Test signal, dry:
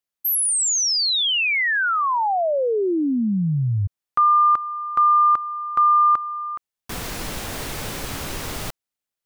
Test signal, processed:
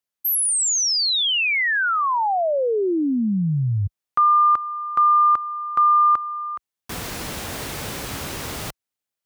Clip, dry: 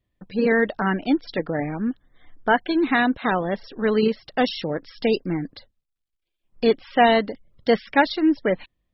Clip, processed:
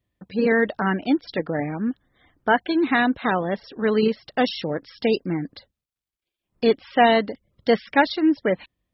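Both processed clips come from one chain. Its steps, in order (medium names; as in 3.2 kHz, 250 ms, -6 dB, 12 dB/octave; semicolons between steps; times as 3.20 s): high-pass 50 Hz 12 dB/octave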